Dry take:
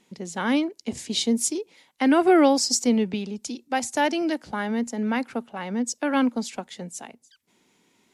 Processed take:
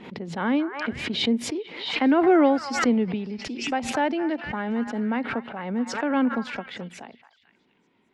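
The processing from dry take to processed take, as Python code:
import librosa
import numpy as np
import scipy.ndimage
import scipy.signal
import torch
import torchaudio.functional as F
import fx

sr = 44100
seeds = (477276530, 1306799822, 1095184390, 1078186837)

y = fx.air_absorb(x, sr, metres=400.0)
y = fx.echo_stepped(y, sr, ms=221, hz=1300.0, octaves=0.7, feedback_pct=70, wet_db=-8.5)
y = fx.pre_swell(y, sr, db_per_s=65.0)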